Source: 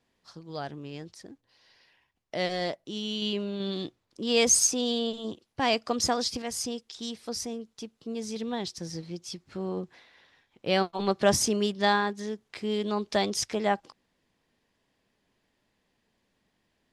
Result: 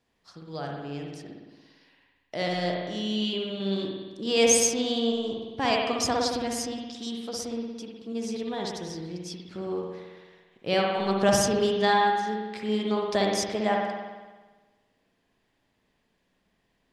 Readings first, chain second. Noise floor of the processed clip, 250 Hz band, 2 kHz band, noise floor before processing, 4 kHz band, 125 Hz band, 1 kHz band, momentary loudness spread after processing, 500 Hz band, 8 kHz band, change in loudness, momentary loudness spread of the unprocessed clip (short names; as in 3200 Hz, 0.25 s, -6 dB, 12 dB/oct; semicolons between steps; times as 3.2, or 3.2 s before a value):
-73 dBFS, +2.5 dB, +2.0 dB, -76 dBFS, +0.5 dB, +2.5 dB, +3.5 dB, 16 LU, +3.0 dB, -1.0 dB, +1.5 dB, 15 LU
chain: spring tank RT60 1.3 s, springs 56 ms, chirp 40 ms, DRR -0.5 dB; gain -1 dB